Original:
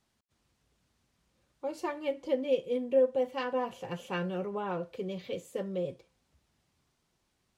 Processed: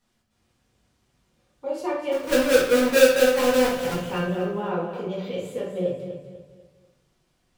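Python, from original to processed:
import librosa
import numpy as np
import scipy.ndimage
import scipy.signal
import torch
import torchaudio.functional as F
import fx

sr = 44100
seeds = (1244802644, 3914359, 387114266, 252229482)

p1 = fx.halfwave_hold(x, sr, at=(2.11, 3.93), fade=0.02)
p2 = p1 + fx.echo_feedback(p1, sr, ms=247, feedback_pct=37, wet_db=-10, dry=0)
p3 = fx.room_shoebox(p2, sr, seeds[0], volume_m3=150.0, walls='mixed', distance_m=1.8)
y = p3 * 10.0 ** (-1.0 / 20.0)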